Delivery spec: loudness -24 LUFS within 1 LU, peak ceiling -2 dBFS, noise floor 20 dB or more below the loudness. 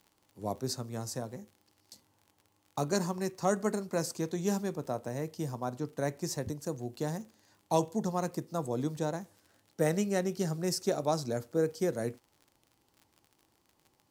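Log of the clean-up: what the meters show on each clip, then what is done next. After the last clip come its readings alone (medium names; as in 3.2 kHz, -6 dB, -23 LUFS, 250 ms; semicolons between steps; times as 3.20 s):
tick rate 48 per s; loudness -34.0 LUFS; peak level -15.5 dBFS; loudness target -24.0 LUFS
-> de-click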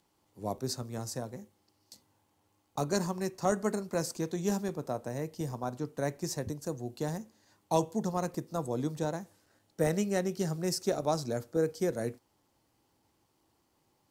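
tick rate 0.71 per s; loudness -34.0 LUFS; peak level -14.0 dBFS; loudness target -24.0 LUFS
-> trim +10 dB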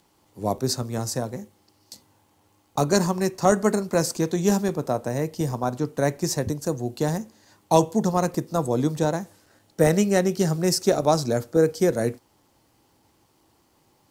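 loudness -24.0 LUFS; peak level -4.0 dBFS; noise floor -64 dBFS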